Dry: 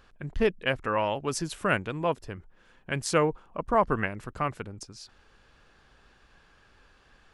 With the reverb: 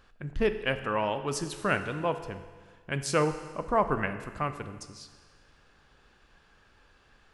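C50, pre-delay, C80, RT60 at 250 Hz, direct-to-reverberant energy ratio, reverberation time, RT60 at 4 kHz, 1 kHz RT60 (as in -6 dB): 11.0 dB, 14 ms, 12.0 dB, 1.5 s, 9.0 dB, 1.5 s, 1.5 s, 1.5 s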